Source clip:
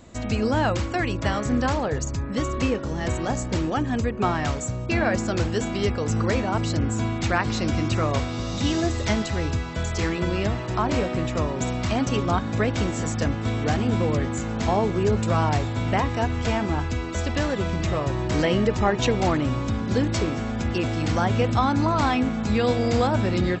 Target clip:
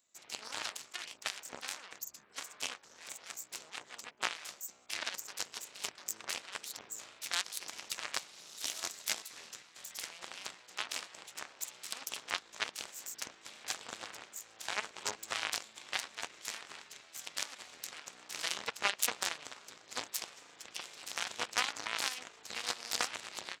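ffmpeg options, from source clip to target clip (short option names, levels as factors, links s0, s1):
-af "aeval=exprs='0.376*(cos(1*acos(clip(val(0)/0.376,-1,1)))-cos(1*PI/2))+0.106*(cos(2*acos(clip(val(0)/0.376,-1,1)))-cos(2*PI/2))+0.133*(cos(3*acos(clip(val(0)/0.376,-1,1)))-cos(3*PI/2))+0.0168*(cos(8*acos(clip(val(0)/0.376,-1,1)))-cos(8*PI/2))':c=same,aderivative,volume=2.99"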